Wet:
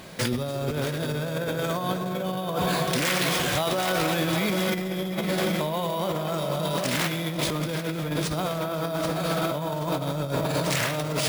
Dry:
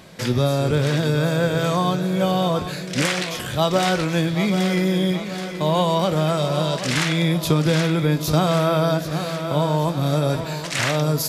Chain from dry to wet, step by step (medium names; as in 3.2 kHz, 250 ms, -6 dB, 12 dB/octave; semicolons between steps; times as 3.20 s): peaking EQ 120 Hz -3 dB 1.4 oct; echo whose repeats swap between lows and highs 251 ms, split 1.1 kHz, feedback 84%, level -10.5 dB; reverberation, pre-delay 3 ms, DRR 9 dB; careless resampling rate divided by 3×, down none, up hold; filtered feedback delay 473 ms, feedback 75%, level -16 dB; peak limiter -15.5 dBFS, peak gain reduction 8.5 dB; 2.56–4.75 s: bass shelf 410 Hz -4 dB; compressor with a negative ratio -26 dBFS, ratio -0.5